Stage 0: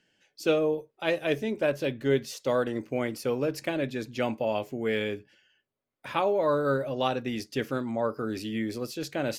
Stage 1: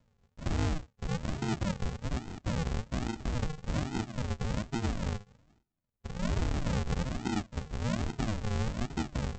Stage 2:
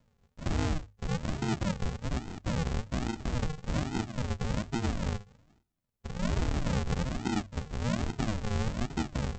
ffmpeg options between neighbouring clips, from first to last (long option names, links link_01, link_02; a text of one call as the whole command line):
ffmpeg -i in.wav -af "deesser=0.85,alimiter=level_in=0.5dB:limit=-24dB:level=0:latency=1:release=58,volume=-0.5dB,aresample=16000,acrusher=samples=40:mix=1:aa=0.000001:lfo=1:lforange=24:lforate=1.2,aresample=44100,volume=1.5dB" out.wav
ffmpeg -i in.wav -af "bandreject=frequency=50:width_type=h:width=6,bandreject=frequency=100:width_type=h:width=6,volume=1.5dB" out.wav